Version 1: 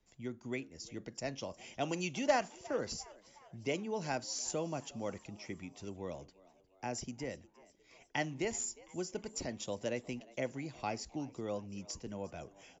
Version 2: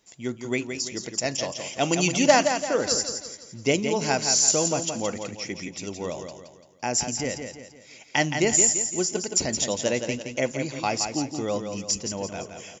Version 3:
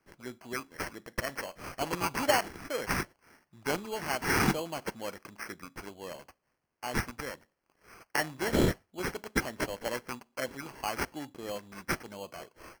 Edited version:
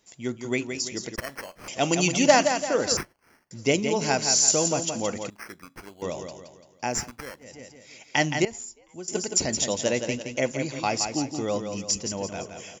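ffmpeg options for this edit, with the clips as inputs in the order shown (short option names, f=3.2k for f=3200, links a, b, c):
-filter_complex "[2:a]asplit=4[a][b][c][d];[1:a]asplit=6[e][f][g][h][i][j];[e]atrim=end=1.162[k];[a]atrim=start=1.158:end=1.682[l];[f]atrim=start=1.678:end=2.972[m];[b]atrim=start=2.968:end=3.512[n];[g]atrim=start=3.508:end=5.302[o];[c]atrim=start=5.298:end=6.022[p];[h]atrim=start=6.018:end=7.11[q];[d]atrim=start=6.87:end=7.62[r];[i]atrim=start=7.38:end=8.452[s];[0:a]atrim=start=8.448:end=9.082[t];[j]atrim=start=9.078[u];[k][l]acrossfade=d=0.004:c1=hsin:c2=hsin[v];[v][m]acrossfade=d=0.004:c1=hsin:c2=hsin[w];[w][n]acrossfade=d=0.004:c1=hsin:c2=hsin[x];[x][o]acrossfade=d=0.004:c1=hsin:c2=hsin[y];[y][p]acrossfade=d=0.004:c1=hsin:c2=hsin[z];[z][q]acrossfade=d=0.004:c1=hsin:c2=hsin[aa];[aa][r]acrossfade=d=0.24:c1=tri:c2=tri[ab];[ab][s]acrossfade=d=0.24:c1=tri:c2=tri[ac];[ac][t]acrossfade=d=0.004:c1=hsin:c2=hsin[ad];[ad][u]acrossfade=d=0.004:c1=hsin:c2=hsin"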